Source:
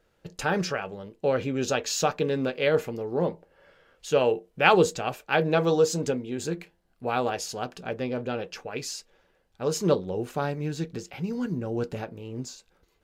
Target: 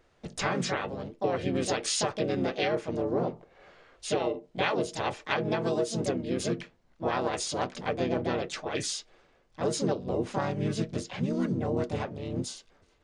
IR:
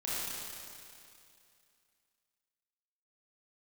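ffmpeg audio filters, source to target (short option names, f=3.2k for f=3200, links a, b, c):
-filter_complex "[0:a]acompressor=threshold=-27dB:ratio=16,aresample=16000,aresample=44100,asplit=3[a][b][c];[b]asetrate=33038,aresample=44100,atempo=1.33484,volume=-4dB[d];[c]asetrate=58866,aresample=44100,atempo=0.749154,volume=-3dB[e];[a][d][e]amix=inputs=3:normalize=0"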